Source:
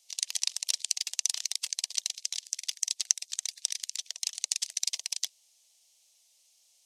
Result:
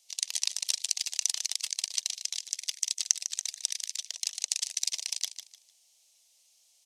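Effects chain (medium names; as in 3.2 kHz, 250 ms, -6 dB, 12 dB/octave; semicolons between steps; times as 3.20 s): feedback delay 151 ms, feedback 27%, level -10.5 dB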